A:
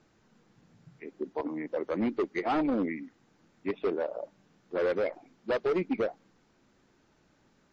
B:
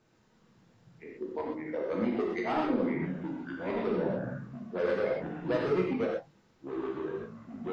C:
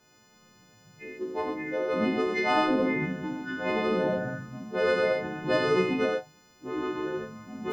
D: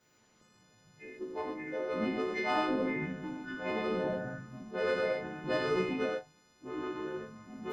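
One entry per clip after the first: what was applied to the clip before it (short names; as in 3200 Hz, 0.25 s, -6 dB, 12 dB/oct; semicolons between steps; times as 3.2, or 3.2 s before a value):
non-linear reverb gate 0.15 s flat, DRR -2.5 dB; echoes that change speed 0.32 s, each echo -5 st, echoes 2, each echo -6 dB; gain -5 dB
frequency quantiser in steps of 3 st; gain +4 dB
gain -6.5 dB; Opus 16 kbps 48000 Hz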